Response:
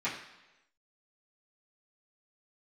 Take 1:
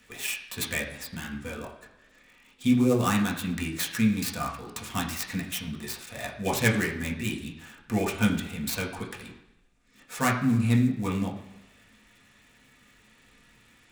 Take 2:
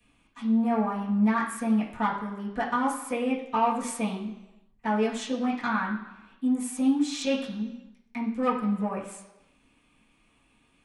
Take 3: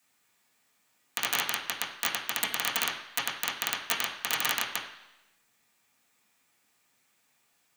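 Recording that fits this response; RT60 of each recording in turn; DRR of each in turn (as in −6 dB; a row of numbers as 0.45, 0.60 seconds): 2; 1.0, 1.0, 1.0 seconds; −2.5, −12.0, −7.0 decibels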